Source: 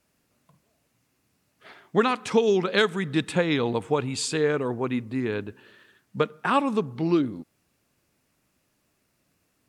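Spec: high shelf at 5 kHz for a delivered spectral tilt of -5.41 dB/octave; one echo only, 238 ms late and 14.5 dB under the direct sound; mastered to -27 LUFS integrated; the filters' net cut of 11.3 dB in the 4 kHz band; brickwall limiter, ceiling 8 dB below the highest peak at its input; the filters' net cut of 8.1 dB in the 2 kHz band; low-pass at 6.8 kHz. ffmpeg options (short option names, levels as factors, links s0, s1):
-af "lowpass=6800,equalizer=f=2000:t=o:g=-8.5,equalizer=f=4000:t=o:g=-8,highshelf=f=5000:g=-6.5,alimiter=limit=0.141:level=0:latency=1,aecho=1:1:238:0.188,volume=1.12"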